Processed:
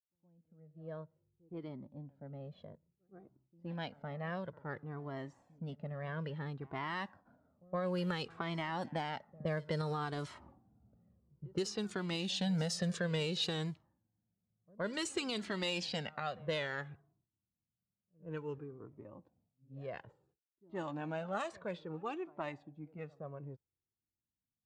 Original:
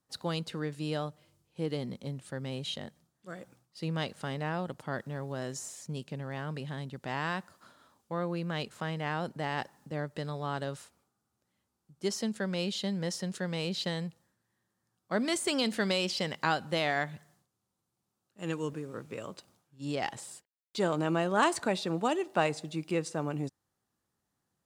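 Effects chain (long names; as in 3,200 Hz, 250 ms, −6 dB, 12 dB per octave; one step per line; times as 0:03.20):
source passing by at 0:10.46, 16 m/s, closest 1.6 metres
camcorder AGC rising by 32 dB per second
echo ahead of the sound 117 ms −21.5 dB
low-pass that shuts in the quiet parts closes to 310 Hz, open at −31 dBFS
flanger whose copies keep moving one way falling 0.58 Hz
level +4.5 dB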